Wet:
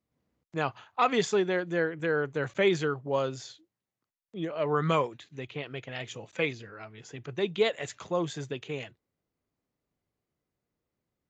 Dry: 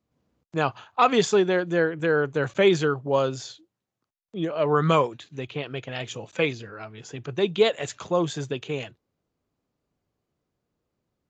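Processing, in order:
parametric band 2,000 Hz +5.5 dB 0.34 octaves
level −6 dB

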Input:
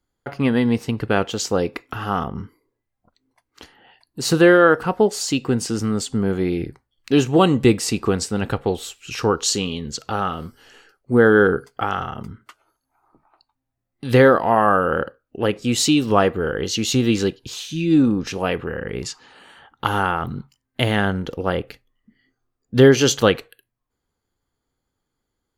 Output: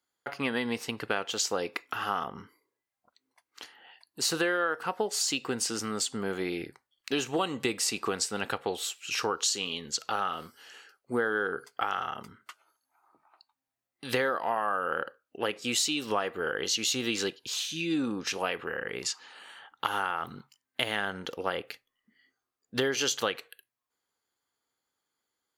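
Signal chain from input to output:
high-pass filter 1,100 Hz 6 dB per octave
downward compressor 6 to 1, threshold −25 dBFS, peak gain reduction 11.5 dB

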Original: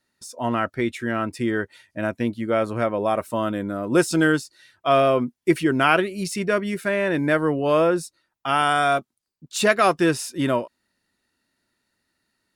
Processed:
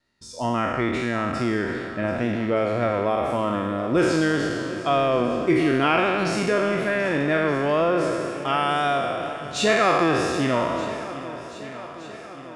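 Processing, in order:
peak hold with a decay on every bin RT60 1.61 s
low-pass filter 5,600 Hz 12 dB per octave
low-shelf EQ 67 Hz +9.5 dB
notch filter 1,500 Hz, Q 14
in parallel at +2.5 dB: downward compressor, threshold −21 dBFS, peak gain reduction 11 dB
on the sum: tape wow and flutter 26 cents
on a send: feedback echo with a long and a short gap by turns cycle 1,220 ms, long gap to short 1.5 to 1, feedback 52%, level −15 dB
on the sum: level −8 dB

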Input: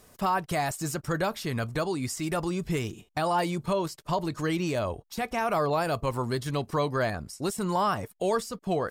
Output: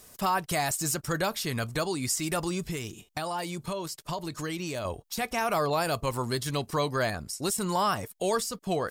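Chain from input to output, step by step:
high-shelf EQ 2,900 Hz +9.5 dB
0:02.68–0:04.85: downward compressor 2.5 to 1, threshold −31 dBFS, peak gain reduction 7 dB
level −1.5 dB

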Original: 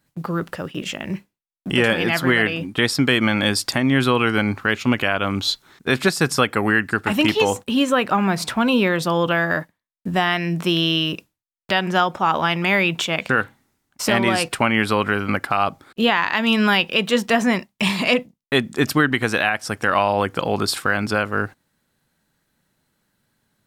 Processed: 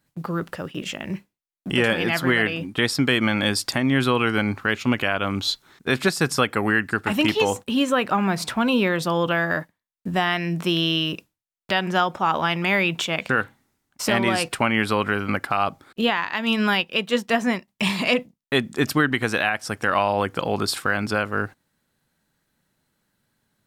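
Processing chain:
0:16.01–0:17.68: expander for the loud parts 1.5 to 1, over −35 dBFS
level −2.5 dB

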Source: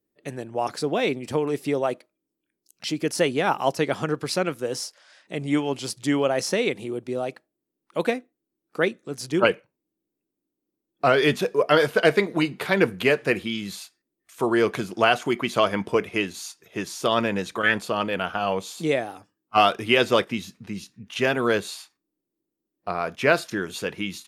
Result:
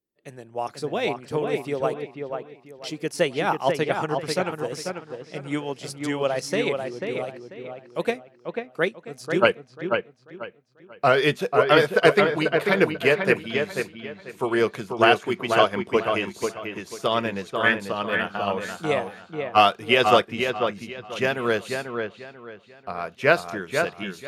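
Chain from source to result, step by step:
parametric band 280 Hz −4.5 dB 0.44 octaves
delay with a low-pass on its return 491 ms, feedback 40%, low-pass 2,900 Hz, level −3.5 dB
expander for the loud parts 1.5 to 1, over −34 dBFS
level +2.5 dB

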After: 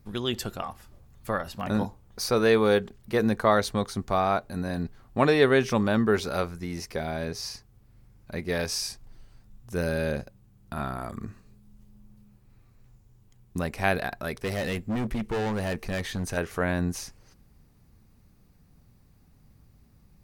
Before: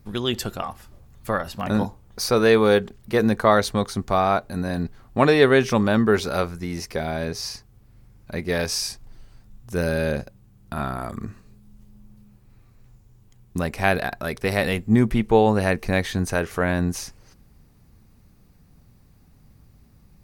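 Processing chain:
0:14.36–0:16.37: gain into a clipping stage and back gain 21 dB
level −4.5 dB

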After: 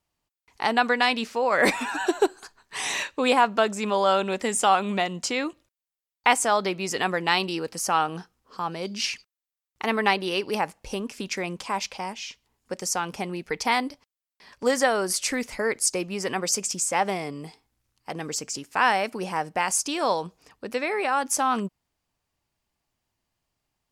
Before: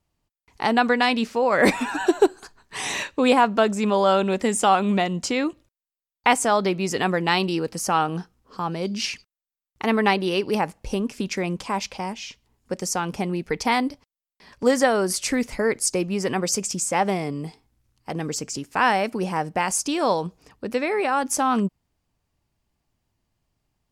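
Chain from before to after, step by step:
low-shelf EQ 390 Hz −9.5 dB

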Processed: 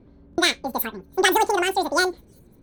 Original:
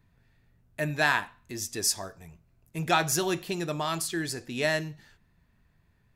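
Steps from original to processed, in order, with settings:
low-pass that shuts in the quiet parts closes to 970 Hz, open at −21.5 dBFS
low-shelf EQ 490 Hz +10.5 dB
on a send: delay with a high-pass on its return 812 ms, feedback 63%, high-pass 5,300 Hz, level −23 dB
on the sum: wrong playback speed 33 rpm record played at 78 rpm
buffer that repeats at 0:00.31, samples 1,024, times 2
level +3.5 dB

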